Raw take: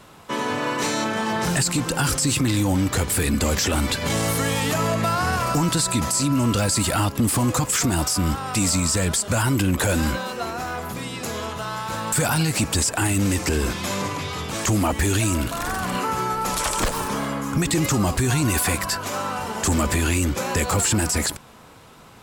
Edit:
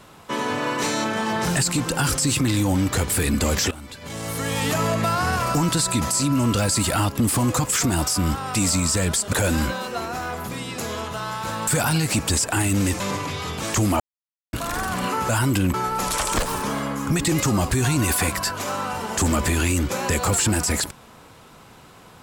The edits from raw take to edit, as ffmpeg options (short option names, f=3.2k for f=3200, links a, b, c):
-filter_complex "[0:a]asplit=8[a][b][c][d][e][f][g][h];[a]atrim=end=3.71,asetpts=PTS-STARTPTS,afade=t=out:st=3.706:d=0.004:c=hsin:silence=0.133352[i];[b]atrim=start=3.71:end=9.332,asetpts=PTS-STARTPTS,afade=t=in:d=0.94:c=qua:silence=0.133352[j];[c]atrim=start=9.778:end=13.452[k];[d]atrim=start=13.908:end=14.91,asetpts=PTS-STARTPTS,afade=t=out:st=0.998:d=0.004:c=hsin[l];[e]atrim=start=14.91:end=15.44,asetpts=PTS-STARTPTS,volume=0[m];[f]atrim=start=15.44:end=16.202,asetpts=PTS-STARTPTS,afade=t=in:d=0.004:c=hsin[n];[g]atrim=start=9.328:end=9.782[o];[h]atrim=start=16.198[p];[i][j]concat=n=2:v=0:a=1[q];[q][k]acrossfade=d=0.004:c1=hsin:c2=hsin[r];[l][m][n]concat=n=3:v=0:a=1[s];[r][s]acrossfade=d=0.004:c1=hsin:c2=hsin[t];[t][o]acrossfade=d=0.004:c1=hsin:c2=hsin[u];[u][p]acrossfade=d=0.004:c1=hsin:c2=hsin"